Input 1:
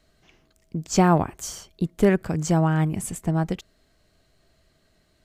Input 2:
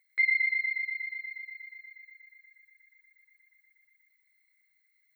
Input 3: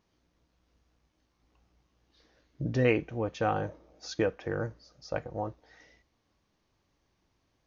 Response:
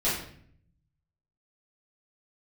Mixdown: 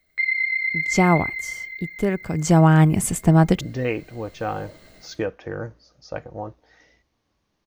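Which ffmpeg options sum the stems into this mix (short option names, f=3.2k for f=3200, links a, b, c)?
-filter_complex "[0:a]dynaudnorm=f=610:g=3:m=10.5dB,volume=1dB,afade=t=out:st=1.13:d=0.26:silence=0.446684,afade=t=in:st=2.21:d=0.49:silence=0.281838[a];[1:a]volume=2dB,asplit=2[b][c];[c]volume=-13.5dB[d];[2:a]adelay=1000,volume=-8dB[e];[3:a]atrim=start_sample=2205[f];[d][f]afir=irnorm=-1:irlink=0[g];[a][b][e][g]amix=inputs=4:normalize=0,dynaudnorm=f=180:g=9:m=10dB"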